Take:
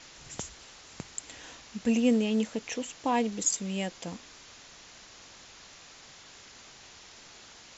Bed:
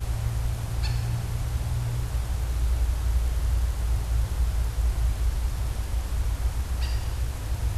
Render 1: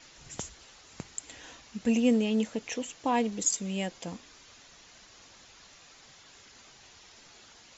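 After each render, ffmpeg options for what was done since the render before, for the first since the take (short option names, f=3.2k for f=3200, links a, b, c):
-af "afftdn=nr=6:nf=-52"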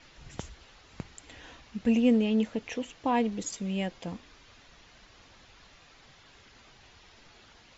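-af "lowpass=4k,lowshelf=f=100:g=9.5"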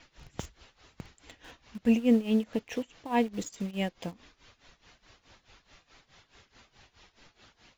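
-filter_complex "[0:a]tremolo=f=4.7:d=0.86,asplit=2[a][b];[b]acrusher=bits=6:mix=0:aa=0.000001,volume=-11dB[c];[a][c]amix=inputs=2:normalize=0"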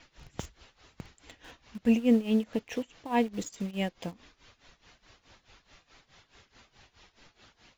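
-af anull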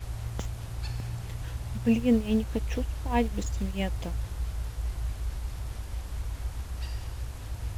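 -filter_complex "[1:a]volume=-7.5dB[a];[0:a][a]amix=inputs=2:normalize=0"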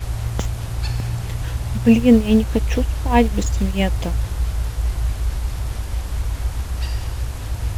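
-af "volume=11dB"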